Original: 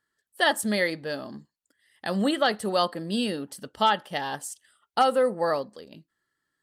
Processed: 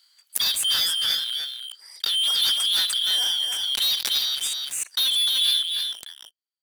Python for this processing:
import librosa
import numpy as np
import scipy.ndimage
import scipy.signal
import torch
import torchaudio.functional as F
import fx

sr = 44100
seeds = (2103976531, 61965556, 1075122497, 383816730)

y = fx.band_shuffle(x, sr, order='3412')
y = scipy.signal.sosfilt(scipy.signal.butter(2, 1400.0, 'highpass', fs=sr, output='sos'), y)
y = fx.leveller(y, sr, passes=5)
y = y + 10.0 ** (-4.5 / 20.0) * np.pad(y, (int(298 * sr / 1000.0), 0))[:len(y)]
y = fx.pre_swell(y, sr, db_per_s=30.0)
y = y * 10.0 ** (-10.5 / 20.0)